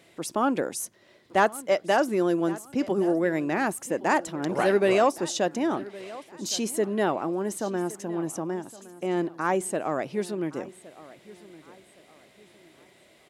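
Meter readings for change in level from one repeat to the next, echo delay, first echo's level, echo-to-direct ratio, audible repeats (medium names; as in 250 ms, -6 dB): -9.5 dB, 1115 ms, -19.0 dB, -18.5 dB, 2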